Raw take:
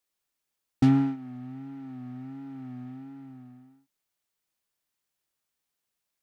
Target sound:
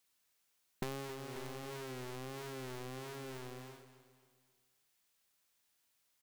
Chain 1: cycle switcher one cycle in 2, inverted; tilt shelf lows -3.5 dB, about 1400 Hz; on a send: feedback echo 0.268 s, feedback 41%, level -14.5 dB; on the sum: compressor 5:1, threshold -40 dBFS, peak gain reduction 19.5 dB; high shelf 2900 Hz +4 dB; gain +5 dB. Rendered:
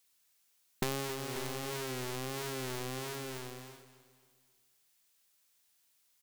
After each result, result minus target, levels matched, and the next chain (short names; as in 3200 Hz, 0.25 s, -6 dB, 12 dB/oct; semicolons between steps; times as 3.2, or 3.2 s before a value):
compressor: peak gain reduction -5.5 dB; 8000 Hz band +4.0 dB
cycle switcher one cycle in 2, inverted; tilt shelf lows -3.5 dB, about 1400 Hz; on a send: feedback echo 0.268 s, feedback 41%, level -14.5 dB; on the sum: compressor 5:1, threshold -47 dBFS, peak gain reduction 25 dB; high shelf 2900 Hz +4 dB; gain +5 dB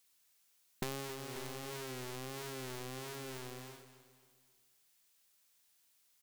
8000 Hz band +4.0 dB
cycle switcher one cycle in 2, inverted; tilt shelf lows -3.5 dB, about 1400 Hz; on a send: feedback echo 0.268 s, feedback 41%, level -14.5 dB; on the sum: compressor 5:1, threshold -47 dBFS, peak gain reduction 25 dB; high shelf 2900 Hz -2.5 dB; gain +5 dB